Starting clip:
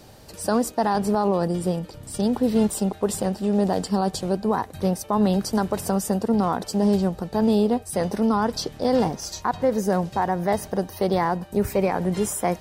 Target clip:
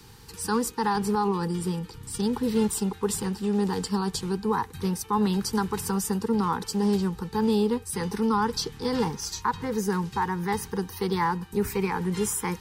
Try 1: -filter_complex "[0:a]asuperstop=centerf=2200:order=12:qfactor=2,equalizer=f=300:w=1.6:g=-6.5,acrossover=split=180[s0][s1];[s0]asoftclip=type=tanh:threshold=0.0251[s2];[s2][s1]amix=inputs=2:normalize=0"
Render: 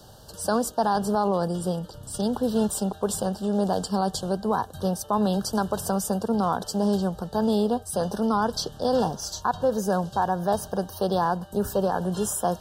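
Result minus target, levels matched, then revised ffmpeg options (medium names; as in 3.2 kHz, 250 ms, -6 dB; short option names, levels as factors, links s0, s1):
2 kHz band -4.0 dB
-filter_complex "[0:a]asuperstop=centerf=630:order=12:qfactor=2,equalizer=f=300:w=1.6:g=-6.5,acrossover=split=180[s0][s1];[s0]asoftclip=type=tanh:threshold=0.0251[s2];[s2][s1]amix=inputs=2:normalize=0"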